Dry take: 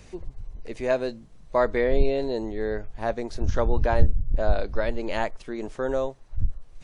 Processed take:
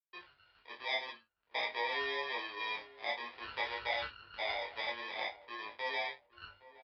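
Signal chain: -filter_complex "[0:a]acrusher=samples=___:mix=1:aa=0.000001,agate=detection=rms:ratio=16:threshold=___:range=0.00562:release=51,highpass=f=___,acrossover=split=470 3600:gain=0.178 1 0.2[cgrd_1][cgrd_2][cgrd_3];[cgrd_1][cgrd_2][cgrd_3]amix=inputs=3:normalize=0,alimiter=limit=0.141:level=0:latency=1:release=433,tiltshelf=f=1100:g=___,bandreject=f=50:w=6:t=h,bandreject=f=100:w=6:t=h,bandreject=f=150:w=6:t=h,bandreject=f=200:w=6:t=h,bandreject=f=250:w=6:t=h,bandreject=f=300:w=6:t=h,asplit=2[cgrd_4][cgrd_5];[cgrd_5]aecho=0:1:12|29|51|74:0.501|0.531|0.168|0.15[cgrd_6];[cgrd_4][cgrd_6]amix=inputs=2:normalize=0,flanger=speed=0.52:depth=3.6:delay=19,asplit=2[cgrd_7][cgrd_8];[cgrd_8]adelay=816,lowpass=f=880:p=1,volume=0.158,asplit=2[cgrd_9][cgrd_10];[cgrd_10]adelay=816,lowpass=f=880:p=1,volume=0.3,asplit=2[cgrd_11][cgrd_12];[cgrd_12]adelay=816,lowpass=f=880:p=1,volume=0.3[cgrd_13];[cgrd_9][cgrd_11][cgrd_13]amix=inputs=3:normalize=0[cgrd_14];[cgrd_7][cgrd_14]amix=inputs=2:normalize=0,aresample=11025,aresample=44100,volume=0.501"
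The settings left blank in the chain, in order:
31, 0.00794, 75, -9.5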